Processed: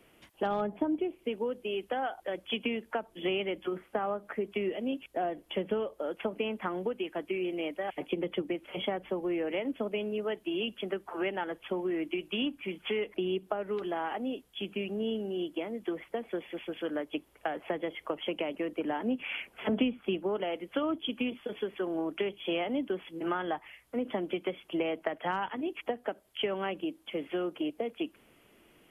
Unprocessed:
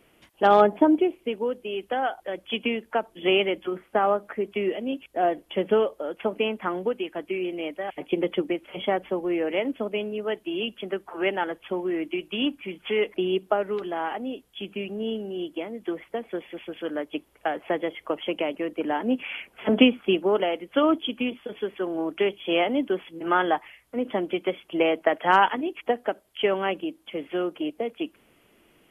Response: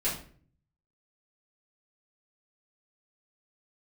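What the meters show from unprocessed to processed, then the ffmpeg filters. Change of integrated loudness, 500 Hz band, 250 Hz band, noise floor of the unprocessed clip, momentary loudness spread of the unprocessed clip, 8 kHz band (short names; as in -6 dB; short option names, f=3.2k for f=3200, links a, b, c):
-8.0 dB, -7.5 dB, -6.5 dB, -62 dBFS, 12 LU, n/a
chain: -filter_complex "[0:a]acrossover=split=170[a][b];[b]acompressor=threshold=-28dB:ratio=6[c];[a][c]amix=inputs=2:normalize=0,volume=-1.5dB"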